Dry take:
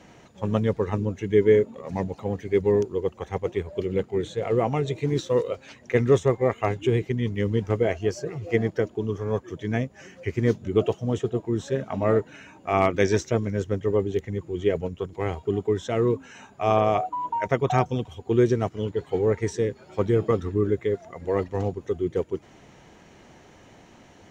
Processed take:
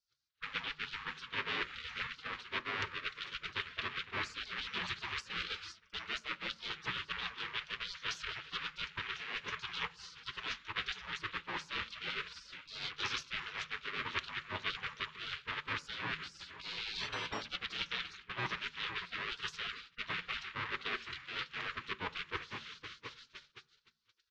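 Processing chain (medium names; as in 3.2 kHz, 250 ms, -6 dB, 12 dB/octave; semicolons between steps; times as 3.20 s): comb 5.5 ms, depth 34%; full-wave rectifier; cabinet simulation 220–4000 Hz, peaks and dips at 420 Hz -4 dB, 690 Hz +9 dB, 1.4 kHz -9 dB; filtered feedback delay 508 ms, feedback 63%, low-pass 2 kHz, level -19 dB; reverse; compression 12:1, threshold -33 dBFS, peak gain reduction 19 dB; reverse; gate -49 dBFS, range -28 dB; spectral gate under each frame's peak -25 dB weak; on a send at -18 dB: reverberation RT60 0.45 s, pre-delay 3 ms; on the sum: trim +16.5 dB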